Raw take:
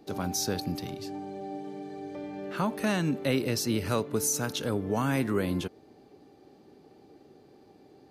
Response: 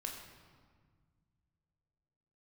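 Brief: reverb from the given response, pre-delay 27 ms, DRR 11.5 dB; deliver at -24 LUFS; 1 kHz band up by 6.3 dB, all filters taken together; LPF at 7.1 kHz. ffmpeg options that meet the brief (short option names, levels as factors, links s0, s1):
-filter_complex "[0:a]lowpass=7100,equalizer=f=1000:t=o:g=8,asplit=2[s0][s1];[1:a]atrim=start_sample=2205,adelay=27[s2];[s1][s2]afir=irnorm=-1:irlink=0,volume=0.299[s3];[s0][s3]amix=inputs=2:normalize=0,volume=1.88"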